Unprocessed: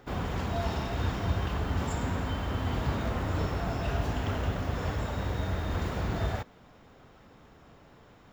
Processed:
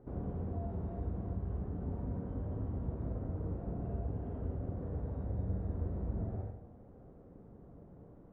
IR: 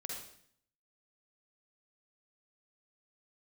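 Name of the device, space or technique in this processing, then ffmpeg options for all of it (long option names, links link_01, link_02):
television next door: -filter_complex "[0:a]acompressor=threshold=-39dB:ratio=3,lowpass=470[link_01];[1:a]atrim=start_sample=2205[link_02];[link_01][link_02]afir=irnorm=-1:irlink=0,volume=3.5dB"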